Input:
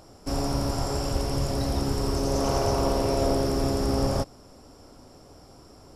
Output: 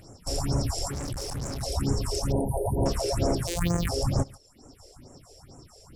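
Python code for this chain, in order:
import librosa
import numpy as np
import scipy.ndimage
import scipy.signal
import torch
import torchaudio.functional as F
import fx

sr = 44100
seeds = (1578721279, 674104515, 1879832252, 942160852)

p1 = fx.sample_sort(x, sr, block=256, at=(3.47, 3.89))
p2 = p1 + fx.echo_single(p1, sr, ms=141, db=-12.5, dry=0)
p3 = fx.phaser_stages(p2, sr, stages=4, low_hz=180.0, high_hz=3800.0, hz=2.2, feedback_pct=40)
p4 = 10.0 ** (-24.0 / 20.0) * np.tanh(p3 / 10.0 ** (-24.0 / 20.0))
p5 = p3 + (p4 * librosa.db_to_amplitude(-5.0))
p6 = fx.brickwall_bandstop(p5, sr, low_hz=1000.0, high_hz=8600.0, at=(2.32, 2.86))
p7 = fx.dereverb_blind(p6, sr, rt60_s=0.84)
p8 = fx.clip_hard(p7, sr, threshold_db=-29.0, at=(0.91, 1.63))
p9 = fx.graphic_eq_10(p8, sr, hz=(125, 2000, 8000), db=(5, 4, 8))
y = p9 * librosa.db_to_amplitude(-4.0)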